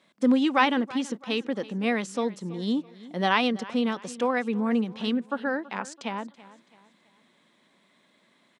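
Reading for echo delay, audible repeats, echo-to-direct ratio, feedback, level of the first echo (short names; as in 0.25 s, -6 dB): 0.33 s, 3, -18.5 dB, 40%, -19.0 dB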